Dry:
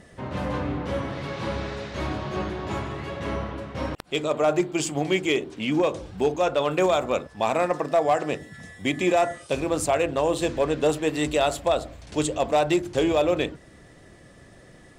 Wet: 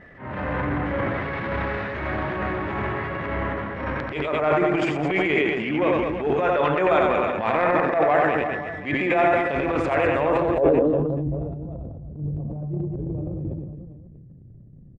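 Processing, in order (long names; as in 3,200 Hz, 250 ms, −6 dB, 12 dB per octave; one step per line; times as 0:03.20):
low-pass filter sweep 1,900 Hz → 150 Hz, 0:10.21–0:11.08
reverse bouncing-ball delay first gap 90 ms, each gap 1.25×, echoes 5
transient designer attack −11 dB, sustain +8 dB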